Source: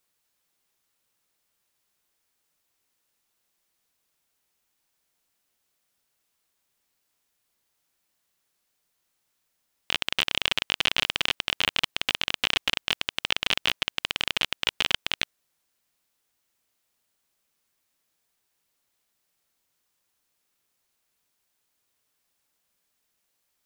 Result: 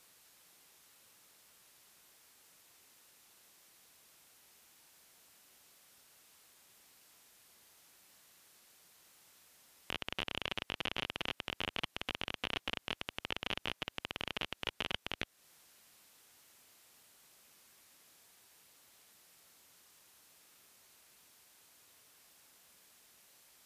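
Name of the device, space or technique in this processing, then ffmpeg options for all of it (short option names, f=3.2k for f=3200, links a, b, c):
podcast mastering chain: -af "highpass=f=75:p=1,deesser=0.8,acompressor=threshold=-44dB:ratio=3,alimiter=level_in=7.5dB:limit=-24dB:level=0:latency=1:release=10,volume=-7.5dB,volume=14dB" -ar 32000 -c:a libmp3lame -b:a 112k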